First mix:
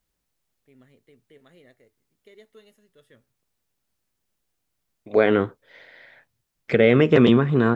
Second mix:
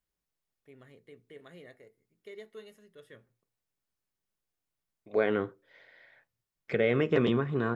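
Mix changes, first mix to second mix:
second voice -11.5 dB; reverb: on, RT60 0.35 s

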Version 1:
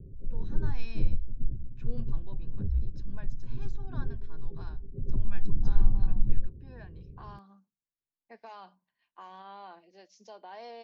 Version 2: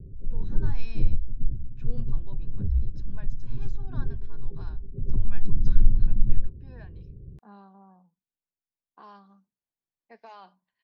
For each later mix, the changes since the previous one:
second voice: entry +1.80 s; background: add bass shelf 220 Hz +4.5 dB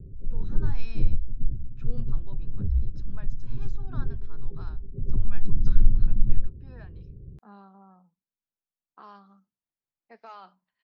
master: remove Butterworth band-stop 1.3 kHz, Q 6.9

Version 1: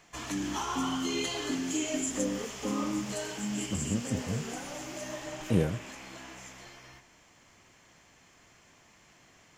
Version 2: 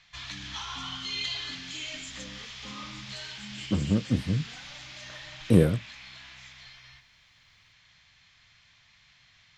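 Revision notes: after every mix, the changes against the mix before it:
speech +7.0 dB; background: add FFT filter 120 Hz 0 dB, 350 Hz -22 dB, 3.8 kHz +11 dB, 10 kHz -23 dB; master: add peaking EQ 2.9 kHz -6 dB 0.4 oct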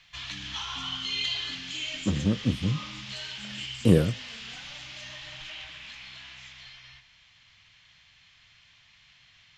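speech: entry -1.65 s; master: add peaking EQ 2.9 kHz +6 dB 0.4 oct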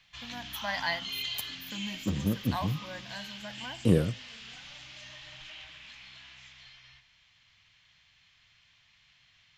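first voice: unmuted; second voice -4.0 dB; background -5.5 dB

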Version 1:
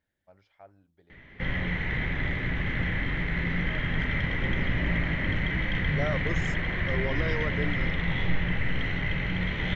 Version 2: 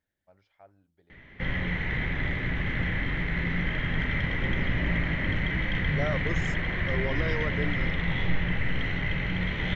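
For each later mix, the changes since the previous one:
first voice -3.0 dB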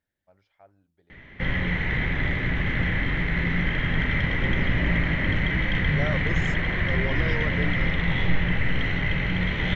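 background +4.0 dB

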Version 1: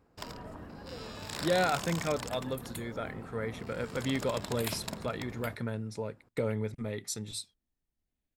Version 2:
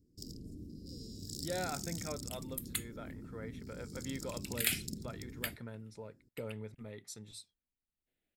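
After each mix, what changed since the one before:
speech -11.0 dB; first sound: add elliptic band-stop 340–5100 Hz, stop band 50 dB; second sound +8.0 dB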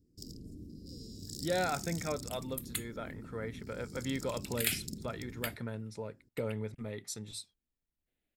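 speech +6.5 dB

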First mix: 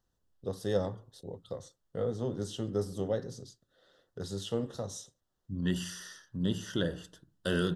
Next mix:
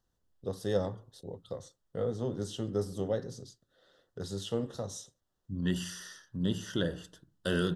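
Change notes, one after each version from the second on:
no change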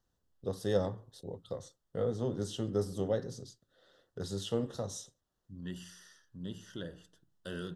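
second voice -11.0 dB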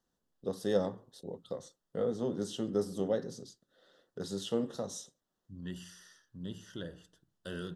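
first voice: add resonant low shelf 140 Hz -8.5 dB, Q 1.5

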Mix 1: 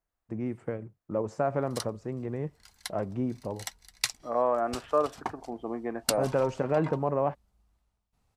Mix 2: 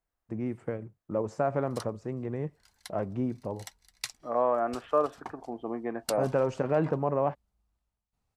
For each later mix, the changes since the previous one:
background -7.5 dB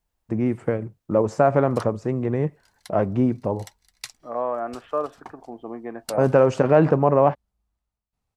first voice +10.5 dB

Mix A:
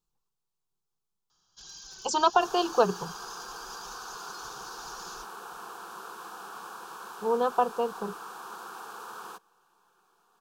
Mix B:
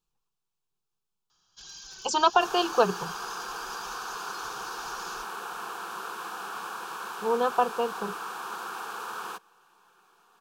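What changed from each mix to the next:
second sound +4.0 dB; master: add peaking EQ 2.3 kHz +7 dB 1.1 oct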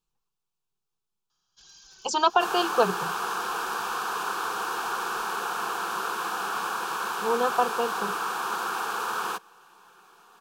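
first sound -7.0 dB; second sound +7.0 dB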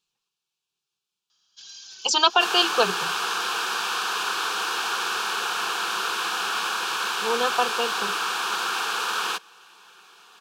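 master: add frequency weighting D

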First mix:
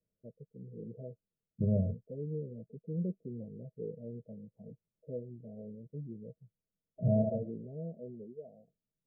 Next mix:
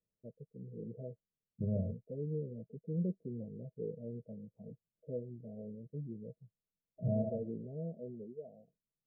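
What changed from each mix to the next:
second voice -5.5 dB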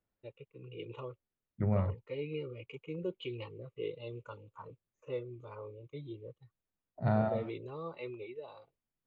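first voice: add static phaser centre 1.1 kHz, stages 8; master: remove rippled Chebyshev low-pass 660 Hz, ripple 9 dB

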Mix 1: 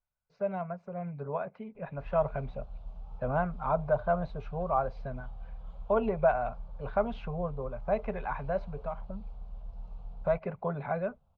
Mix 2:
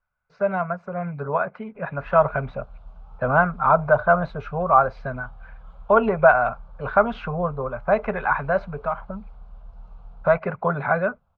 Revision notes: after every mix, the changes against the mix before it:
speech +8.0 dB; master: add peaking EQ 1.4 kHz +11 dB 0.92 oct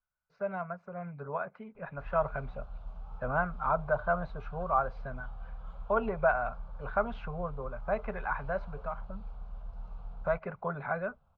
speech -12.0 dB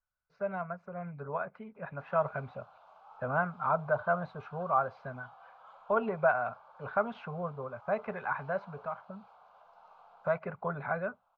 background: add resonant high-pass 780 Hz, resonance Q 1.5

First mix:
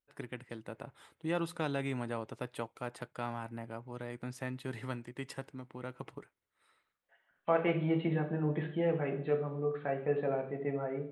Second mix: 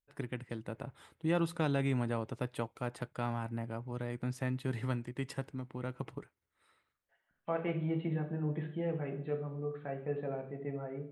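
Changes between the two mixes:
second voice -7.0 dB; master: add bass shelf 200 Hz +9.5 dB

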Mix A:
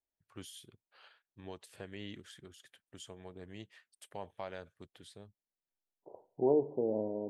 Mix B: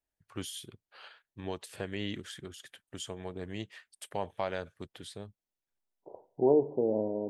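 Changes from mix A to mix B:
first voice +9.0 dB; second voice +4.0 dB

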